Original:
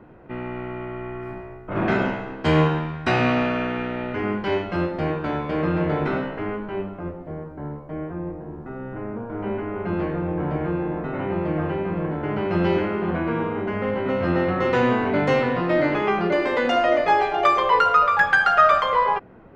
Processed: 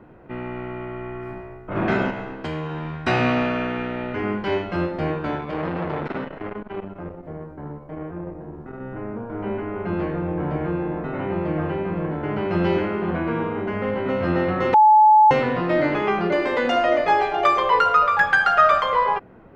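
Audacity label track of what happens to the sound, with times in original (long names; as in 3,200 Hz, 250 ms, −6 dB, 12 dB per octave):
2.100000	3.060000	downward compressor, threshold −25 dBFS
5.350000	8.810000	saturating transformer saturates under 760 Hz
14.740000	15.310000	beep over 859 Hz −9 dBFS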